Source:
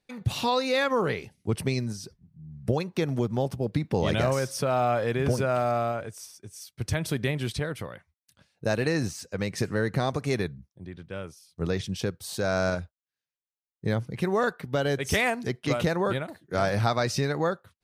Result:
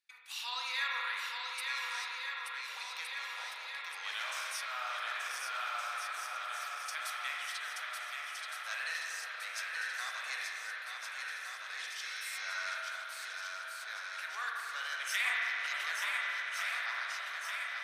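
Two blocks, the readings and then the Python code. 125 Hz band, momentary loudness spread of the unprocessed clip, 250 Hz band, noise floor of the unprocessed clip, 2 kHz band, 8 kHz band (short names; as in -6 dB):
under -40 dB, 14 LU, under -40 dB, under -85 dBFS, -1.0 dB, -4.5 dB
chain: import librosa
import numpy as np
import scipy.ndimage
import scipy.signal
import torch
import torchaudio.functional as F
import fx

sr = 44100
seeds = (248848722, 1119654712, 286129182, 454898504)

y = fx.fade_out_tail(x, sr, length_s=1.92)
y = scipy.signal.sosfilt(scipy.signal.butter(4, 1300.0, 'highpass', fs=sr, output='sos'), y)
y = fx.echo_swing(y, sr, ms=1465, ratio=1.5, feedback_pct=62, wet_db=-4.5)
y = fx.spec_repair(y, sr, seeds[0], start_s=12.04, length_s=0.56, low_hz=1800.0, high_hz=6700.0, source='after')
y = fx.rev_spring(y, sr, rt60_s=3.3, pass_ms=(35, 43), chirp_ms=45, drr_db=-2.5)
y = F.gain(torch.from_numpy(y), -7.0).numpy()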